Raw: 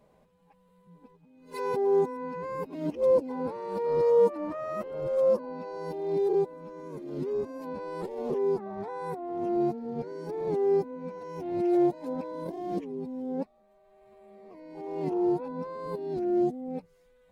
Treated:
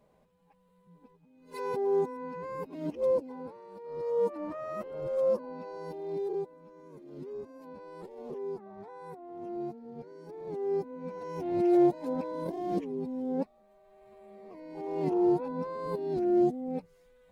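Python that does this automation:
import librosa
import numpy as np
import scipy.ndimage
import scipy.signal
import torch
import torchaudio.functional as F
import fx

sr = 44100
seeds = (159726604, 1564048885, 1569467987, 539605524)

y = fx.gain(x, sr, db=fx.line((3.05, -3.5), (3.81, -16.0), (4.36, -3.5), (5.7, -3.5), (6.63, -10.0), (10.44, -10.0), (11.24, 1.0)))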